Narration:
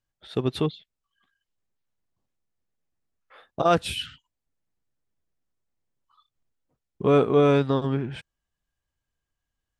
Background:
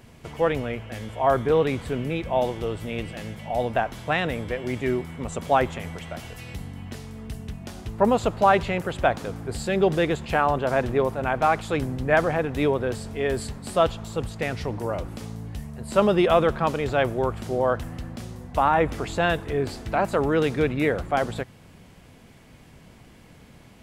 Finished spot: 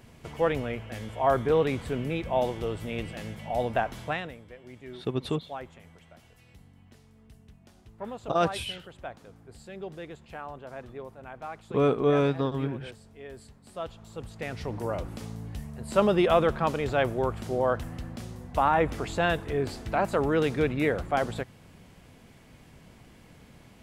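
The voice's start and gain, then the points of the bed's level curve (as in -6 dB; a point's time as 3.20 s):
4.70 s, -4.5 dB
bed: 4.04 s -3 dB
4.40 s -18.5 dB
13.61 s -18.5 dB
14.82 s -3 dB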